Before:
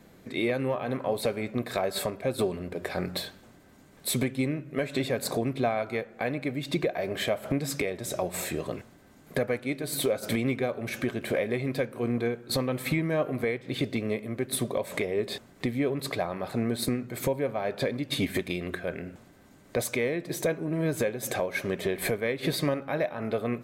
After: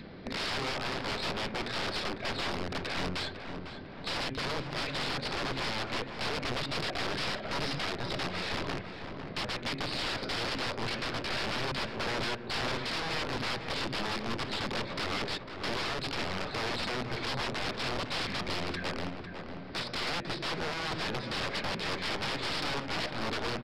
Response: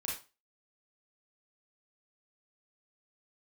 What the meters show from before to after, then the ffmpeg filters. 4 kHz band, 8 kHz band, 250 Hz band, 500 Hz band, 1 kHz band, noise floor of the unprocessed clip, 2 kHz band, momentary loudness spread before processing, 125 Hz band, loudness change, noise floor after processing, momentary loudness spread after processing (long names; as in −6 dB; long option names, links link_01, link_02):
+4.5 dB, −8.5 dB, −8.5 dB, −9.0 dB, +2.0 dB, −55 dBFS, +1.0 dB, 5 LU, −6.0 dB, −3.5 dB, −43 dBFS, 4 LU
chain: -filter_complex "[0:a]adynamicequalizer=threshold=0.00794:dfrequency=650:dqfactor=1:tfrequency=650:tqfactor=1:attack=5:release=100:ratio=0.375:range=4:mode=cutabove:tftype=bell,aresample=11025,aeval=exprs='(mod(37.6*val(0)+1,2)-1)/37.6':channel_layout=same,aresample=44100,aeval=exprs='(tanh(35.5*val(0)+0.45)-tanh(0.45))/35.5':channel_layout=same,acompressor=mode=upward:threshold=-45dB:ratio=2.5,asplit=2[link_01][link_02];[link_02]adelay=501,lowpass=frequency=2100:poles=1,volume=-7dB,asplit=2[link_03][link_04];[link_04]adelay=501,lowpass=frequency=2100:poles=1,volume=0.53,asplit=2[link_05][link_06];[link_06]adelay=501,lowpass=frequency=2100:poles=1,volume=0.53,asplit=2[link_07][link_08];[link_08]adelay=501,lowpass=frequency=2100:poles=1,volume=0.53,asplit=2[link_09][link_10];[link_10]adelay=501,lowpass=frequency=2100:poles=1,volume=0.53,asplit=2[link_11][link_12];[link_12]adelay=501,lowpass=frequency=2100:poles=1,volume=0.53[link_13];[link_01][link_03][link_05][link_07][link_09][link_11][link_13]amix=inputs=7:normalize=0,volume=5dB"